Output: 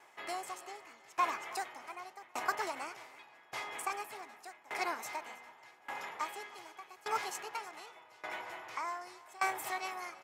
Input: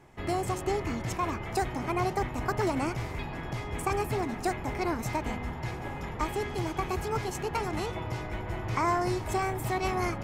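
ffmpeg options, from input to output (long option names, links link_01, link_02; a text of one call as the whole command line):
ffmpeg -i in.wav -af "highpass=800,aecho=1:1:322:0.2,aeval=exprs='val(0)*pow(10,-23*if(lt(mod(0.85*n/s,1),2*abs(0.85)/1000),1-mod(0.85*n/s,1)/(2*abs(0.85)/1000),(mod(0.85*n/s,1)-2*abs(0.85)/1000)/(1-2*abs(0.85)/1000))/20)':channel_layout=same,volume=3dB" out.wav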